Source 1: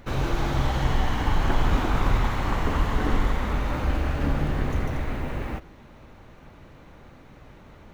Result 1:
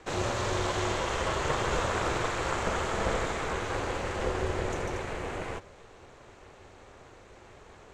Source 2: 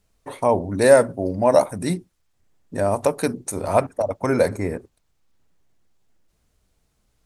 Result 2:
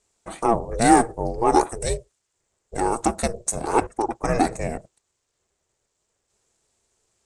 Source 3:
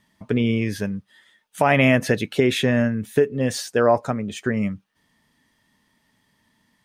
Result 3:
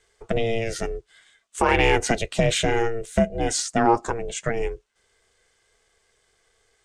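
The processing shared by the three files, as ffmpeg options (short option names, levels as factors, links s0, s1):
-filter_complex "[0:a]highpass=f=130:w=0.5412,highpass=f=130:w=1.3066,aeval=exprs='val(0)*sin(2*PI*230*n/s)':c=same,lowpass=f=7700:t=q:w=3.6,asplit=2[s0][s1];[s1]acontrast=65,volume=0.75[s2];[s0][s2]amix=inputs=2:normalize=0,volume=0.473"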